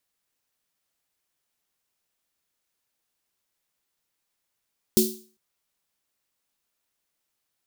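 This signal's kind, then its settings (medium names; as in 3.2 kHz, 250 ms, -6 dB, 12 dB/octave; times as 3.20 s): snare drum length 0.40 s, tones 220 Hz, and 370 Hz, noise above 3.9 kHz, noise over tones -2.5 dB, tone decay 0.39 s, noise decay 0.40 s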